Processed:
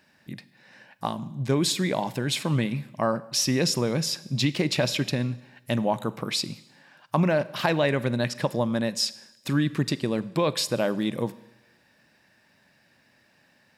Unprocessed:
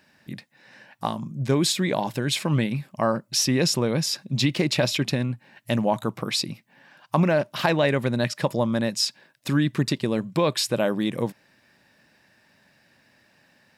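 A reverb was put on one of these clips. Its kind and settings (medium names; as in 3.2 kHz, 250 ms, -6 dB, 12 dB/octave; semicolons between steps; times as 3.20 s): Schroeder reverb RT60 0.98 s, combs from 33 ms, DRR 17 dB; trim -2 dB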